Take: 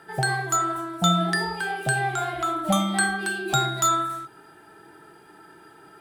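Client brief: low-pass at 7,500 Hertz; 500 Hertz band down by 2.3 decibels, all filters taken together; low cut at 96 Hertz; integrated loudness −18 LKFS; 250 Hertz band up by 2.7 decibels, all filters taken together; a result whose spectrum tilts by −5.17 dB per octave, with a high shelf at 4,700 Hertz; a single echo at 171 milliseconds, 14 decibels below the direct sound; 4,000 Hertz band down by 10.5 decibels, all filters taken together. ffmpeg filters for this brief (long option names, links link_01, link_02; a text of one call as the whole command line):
ffmpeg -i in.wav -af "highpass=96,lowpass=7500,equalizer=frequency=250:width_type=o:gain=6.5,equalizer=frequency=500:width_type=o:gain=-6,equalizer=frequency=4000:width_type=o:gain=-8.5,highshelf=frequency=4700:gain=-7.5,aecho=1:1:171:0.2,volume=7.5dB" out.wav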